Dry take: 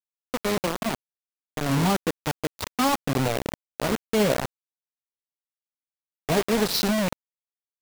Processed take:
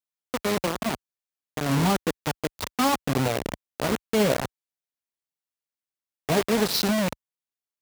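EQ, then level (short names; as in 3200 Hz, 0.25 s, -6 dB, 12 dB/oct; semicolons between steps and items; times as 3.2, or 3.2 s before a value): HPF 44 Hz 12 dB/oct; 0.0 dB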